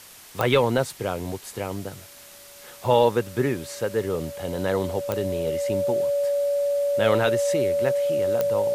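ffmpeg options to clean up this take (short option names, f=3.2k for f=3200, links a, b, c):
-af "adeclick=t=4,bandreject=f=570:w=30,afwtdn=0.0056"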